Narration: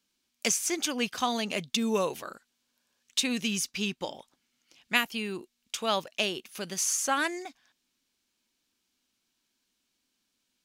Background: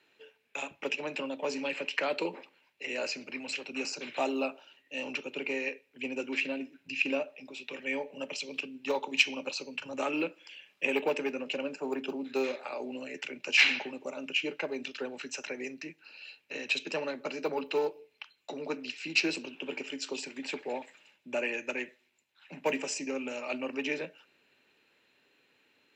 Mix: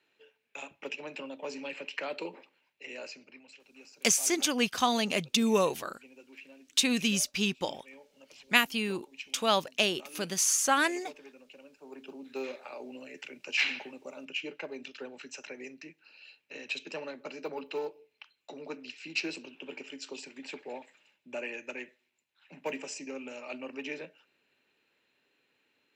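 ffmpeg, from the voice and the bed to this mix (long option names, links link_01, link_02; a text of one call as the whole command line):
ffmpeg -i stem1.wav -i stem2.wav -filter_complex "[0:a]adelay=3600,volume=2dB[link_01];[1:a]volume=8dB,afade=type=out:start_time=2.72:duration=0.8:silence=0.211349,afade=type=in:start_time=11.75:duration=0.75:silence=0.211349[link_02];[link_01][link_02]amix=inputs=2:normalize=0" out.wav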